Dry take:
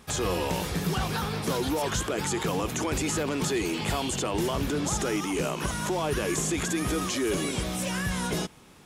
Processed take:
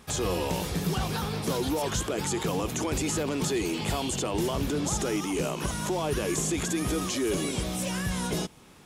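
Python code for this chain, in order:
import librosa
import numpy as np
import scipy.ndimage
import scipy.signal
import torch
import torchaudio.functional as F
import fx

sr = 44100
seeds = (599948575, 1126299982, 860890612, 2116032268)

y = fx.dynamic_eq(x, sr, hz=1600.0, q=1.0, threshold_db=-48.0, ratio=4.0, max_db=-4)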